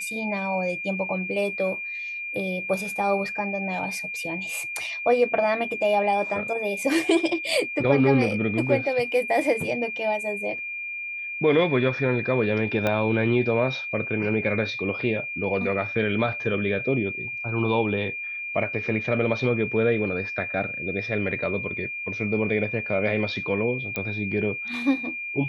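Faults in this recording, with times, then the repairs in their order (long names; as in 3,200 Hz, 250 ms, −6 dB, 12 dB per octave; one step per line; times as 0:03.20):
whistle 2,400 Hz −30 dBFS
0:12.87: click −11 dBFS
0:23.96: click −14 dBFS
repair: click removal
notch filter 2,400 Hz, Q 30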